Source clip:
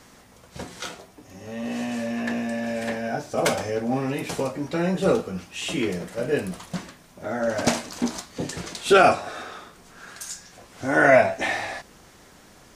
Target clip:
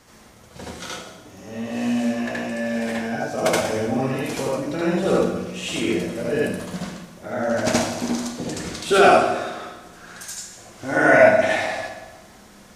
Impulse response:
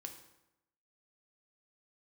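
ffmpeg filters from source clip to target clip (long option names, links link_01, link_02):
-filter_complex "[0:a]asplit=2[link_01][link_02];[1:a]atrim=start_sample=2205,asetrate=28665,aresample=44100,adelay=74[link_03];[link_02][link_03]afir=irnorm=-1:irlink=0,volume=6dB[link_04];[link_01][link_04]amix=inputs=2:normalize=0,volume=-3dB"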